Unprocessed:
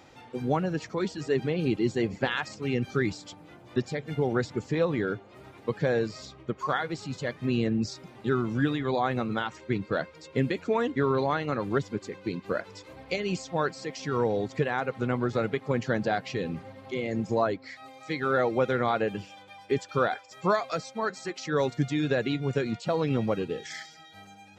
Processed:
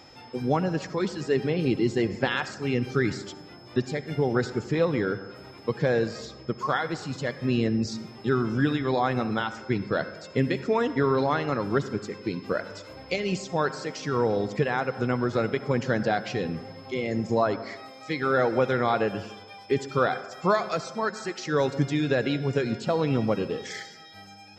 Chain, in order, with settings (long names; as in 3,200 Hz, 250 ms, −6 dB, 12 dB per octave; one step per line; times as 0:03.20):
on a send at −13.5 dB: convolution reverb RT60 1.2 s, pre-delay 53 ms
on the sum: steady tone 5,200 Hz −55 dBFS
level +2 dB